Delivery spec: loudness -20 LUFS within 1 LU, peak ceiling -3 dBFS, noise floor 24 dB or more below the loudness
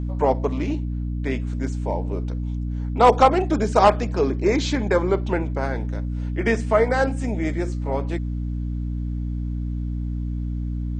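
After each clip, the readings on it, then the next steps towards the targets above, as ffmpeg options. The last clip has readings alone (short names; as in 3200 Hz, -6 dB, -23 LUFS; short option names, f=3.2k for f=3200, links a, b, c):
hum 60 Hz; harmonics up to 300 Hz; hum level -24 dBFS; loudness -23.0 LUFS; peak -2.5 dBFS; loudness target -20.0 LUFS
-> -af "bandreject=f=60:t=h:w=4,bandreject=f=120:t=h:w=4,bandreject=f=180:t=h:w=4,bandreject=f=240:t=h:w=4,bandreject=f=300:t=h:w=4"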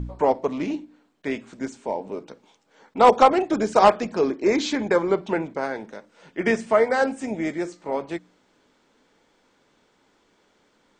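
hum none; loudness -22.5 LUFS; peak -3.0 dBFS; loudness target -20.0 LUFS
-> -af "volume=2.5dB,alimiter=limit=-3dB:level=0:latency=1"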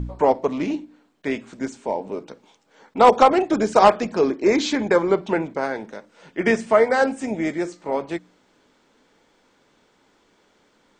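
loudness -20.5 LUFS; peak -3.0 dBFS; noise floor -62 dBFS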